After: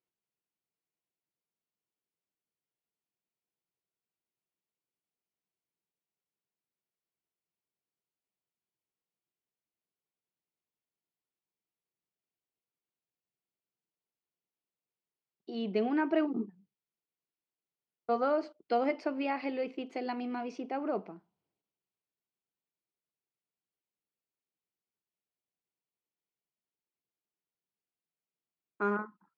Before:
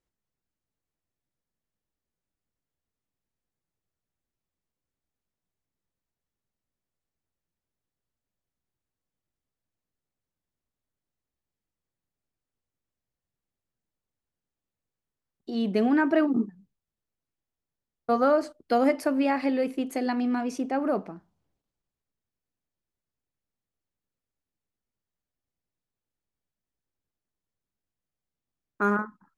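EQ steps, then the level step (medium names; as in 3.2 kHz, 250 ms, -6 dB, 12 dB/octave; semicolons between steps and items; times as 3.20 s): cabinet simulation 230–4300 Hz, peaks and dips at 260 Hz -8 dB, 560 Hz -6 dB, 820 Hz -3 dB, 1.2 kHz -5 dB, 1.7 kHz -9 dB, 3.7 kHz -6 dB; -2.0 dB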